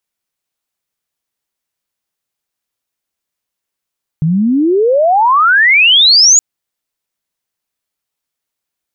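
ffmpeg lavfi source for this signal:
ffmpeg -f lavfi -i "aevalsrc='pow(10,(-9+6*t/2.17)/20)*sin(2*PI*150*2.17/log(7000/150)*(exp(log(7000/150)*t/2.17)-1))':duration=2.17:sample_rate=44100" out.wav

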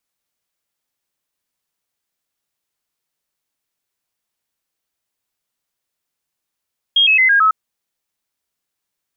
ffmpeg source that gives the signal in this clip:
ffmpeg -f lavfi -i "aevalsrc='0.355*clip(min(mod(t,0.11),0.11-mod(t,0.11))/0.005,0,1)*sin(2*PI*3250*pow(2,-floor(t/0.11)/3)*mod(t,0.11))':duration=0.55:sample_rate=44100" out.wav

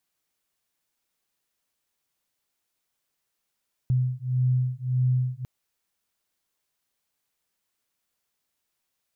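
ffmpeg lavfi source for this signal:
ffmpeg -f lavfi -i "aevalsrc='0.0596*(sin(2*PI*126*t)+sin(2*PI*127.7*t))':duration=1.55:sample_rate=44100" out.wav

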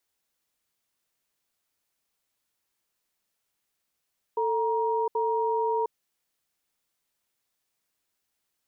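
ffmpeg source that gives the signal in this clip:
ffmpeg -f lavfi -i "aevalsrc='0.0501*(sin(2*PI*445*t)+sin(2*PI*943*t))*clip(min(mod(t,0.78),0.71-mod(t,0.78))/0.005,0,1)':duration=1.52:sample_rate=44100" out.wav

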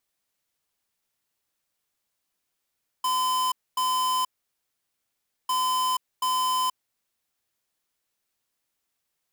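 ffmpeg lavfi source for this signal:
ffmpeg -f lavfi -i "aevalsrc='0.0596*(2*lt(mod(1020*t,1),0.5)-1)*clip(min(mod(mod(t,2.45),0.73),0.48-mod(mod(t,2.45),0.73))/0.005,0,1)*lt(mod(t,2.45),1.46)':duration=4.9:sample_rate=44100" out.wav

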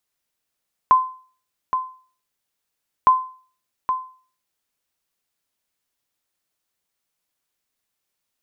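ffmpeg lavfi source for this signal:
ffmpeg -f lavfi -i "aevalsrc='0.501*(sin(2*PI*1030*mod(t,2.16))*exp(-6.91*mod(t,2.16)/0.42)+0.376*sin(2*PI*1030*max(mod(t,2.16)-0.82,0))*exp(-6.91*max(mod(t,2.16)-0.82,0)/0.42))':duration=4.32:sample_rate=44100" out.wav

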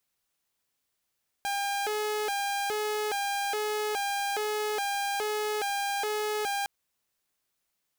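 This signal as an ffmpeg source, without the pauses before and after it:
ffmpeg -f lavfi -i "aevalsrc='0.0531*(2*mod((613*t+189/1.2*(0.5-abs(mod(1.2*t,1)-0.5))),1)-1)':duration=5.21:sample_rate=44100" out.wav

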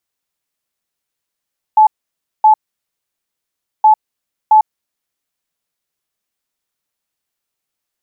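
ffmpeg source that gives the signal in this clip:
ffmpeg -f lavfi -i "aevalsrc='0.631*sin(2*PI*863*t)*clip(min(mod(mod(t,2.07),0.67),0.1-mod(mod(t,2.07),0.67))/0.005,0,1)*lt(mod(t,2.07),1.34)':duration=4.14:sample_rate=44100" out.wav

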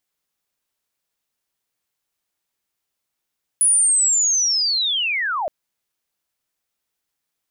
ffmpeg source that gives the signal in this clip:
ffmpeg -f lavfi -i "aevalsrc='pow(10,(-12-8.5*t/1.87)/20)*sin(2*PI*(10000*t-9430*t*t/(2*1.87)))':duration=1.87:sample_rate=44100" out.wav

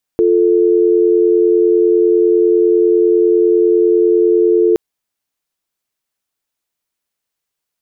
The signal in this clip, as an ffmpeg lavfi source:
ffmpeg -f lavfi -i "aevalsrc='0.282*(sin(2*PI*350*t)+sin(2*PI*440*t))':duration=4.57:sample_rate=44100" out.wav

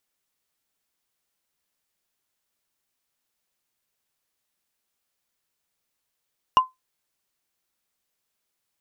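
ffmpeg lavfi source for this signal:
ffmpeg -f lavfi -i "aevalsrc='0.398*pow(10,-3*t/0.17)*sin(2*PI*1030*t)+0.119*pow(10,-3*t/0.05)*sin(2*PI*2839.7*t)+0.0355*pow(10,-3*t/0.022)*sin(2*PI*5566.1*t)+0.0106*pow(10,-3*t/0.012)*sin(2*PI*9201*t)+0.00316*pow(10,-3*t/0.008)*sin(2*PI*13740.2*t)':duration=0.45:sample_rate=44100" out.wav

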